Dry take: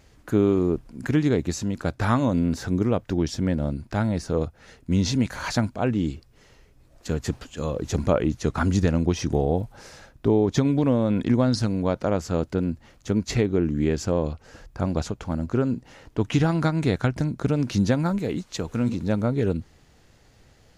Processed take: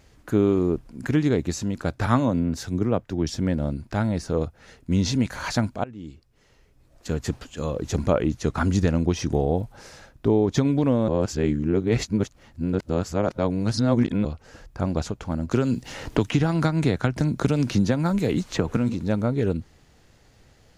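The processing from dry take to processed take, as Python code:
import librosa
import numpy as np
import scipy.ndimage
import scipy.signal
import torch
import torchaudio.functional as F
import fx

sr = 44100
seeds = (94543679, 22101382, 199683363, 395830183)

y = fx.band_widen(x, sr, depth_pct=100, at=(2.06, 3.3))
y = fx.band_squash(y, sr, depth_pct=100, at=(15.51, 18.77))
y = fx.edit(y, sr, fx.fade_in_from(start_s=5.84, length_s=1.34, floor_db=-21.0),
    fx.reverse_span(start_s=11.08, length_s=3.17), tone=tone)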